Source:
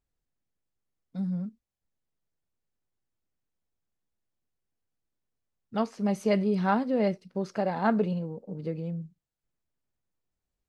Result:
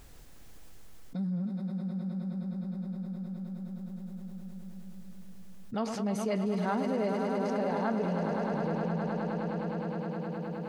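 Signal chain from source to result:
on a send: echo that builds up and dies away 104 ms, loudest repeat 5, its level −11 dB
on the sum: envelope flattener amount 70%
level −8 dB

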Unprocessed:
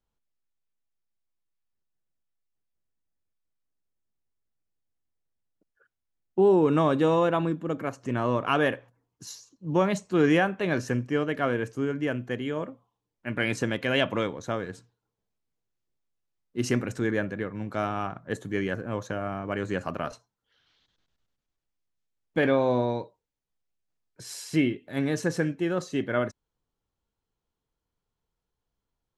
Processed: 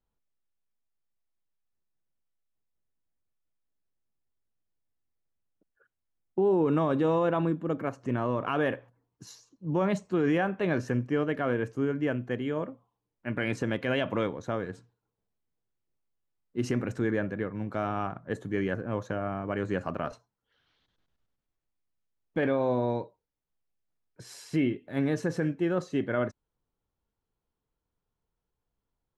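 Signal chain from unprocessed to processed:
high-shelf EQ 3,000 Hz −10 dB
brickwall limiter −17.5 dBFS, peak gain reduction 6 dB

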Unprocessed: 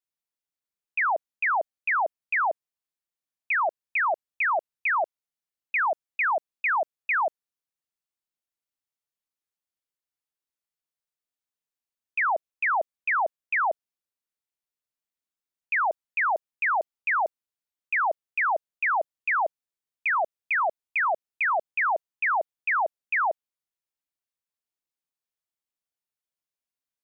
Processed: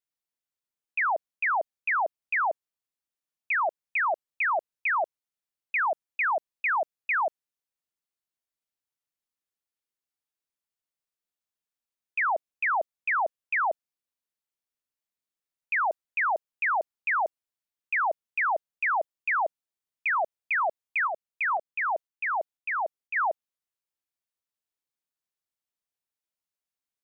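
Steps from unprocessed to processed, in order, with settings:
0:21.07–0:23.16: shaped tremolo saw up 2 Hz, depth 50%
level −1.5 dB

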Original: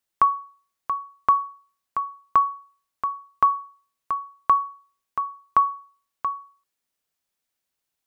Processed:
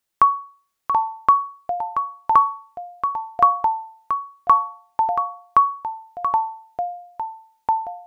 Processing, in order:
delay with pitch and tempo change per echo 675 ms, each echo −4 semitones, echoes 2, each echo −6 dB
level +3.5 dB

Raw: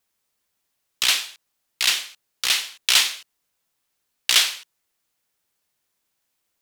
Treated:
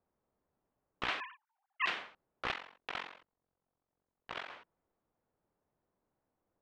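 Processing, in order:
0:01.20–0:01.86: three sine waves on the formant tracks
high-shelf EQ 2,300 Hz −11.5 dB
downward compressor 10 to 1, threshold −28 dBFS, peak gain reduction 10 dB
0:02.51–0:04.50: amplitude modulation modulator 45 Hz, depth 100%
low-pass that shuts in the quiet parts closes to 870 Hz, open at −16 dBFS
level +5 dB

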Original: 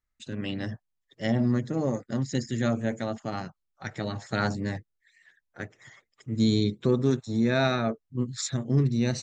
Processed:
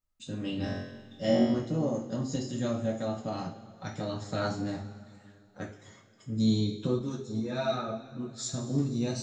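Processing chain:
parametric band 1,900 Hz −11 dB 0.62 octaves
in parallel at −1 dB: downward compressor, threshold −32 dBFS, peak gain reduction 13.5 dB
0:00.56–0:01.54: on the sum: flutter between parallel walls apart 3.7 metres, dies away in 0.82 s
coupled-rooms reverb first 0.34 s, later 2.4 s, from −18 dB, DRR −3 dB
0:06.99–0:08.54: string-ensemble chorus
level −9 dB

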